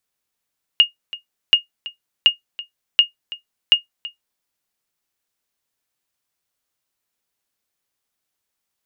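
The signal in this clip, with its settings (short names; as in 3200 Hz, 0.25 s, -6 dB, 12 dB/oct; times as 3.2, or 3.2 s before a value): sonar ping 2850 Hz, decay 0.13 s, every 0.73 s, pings 5, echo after 0.33 s, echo -18.5 dB -2.5 dBFS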